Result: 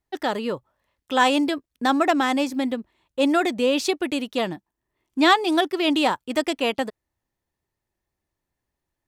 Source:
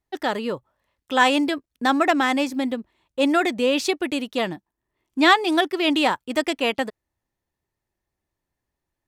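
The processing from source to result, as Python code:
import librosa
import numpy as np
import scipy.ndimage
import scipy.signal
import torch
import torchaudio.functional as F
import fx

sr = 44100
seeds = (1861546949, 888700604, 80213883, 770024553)

y = fx.dynamic_eq(x, sr, hz=2000.0, q=1.5, threshold_db=-32.0, ratio=4.0, max_db=-4)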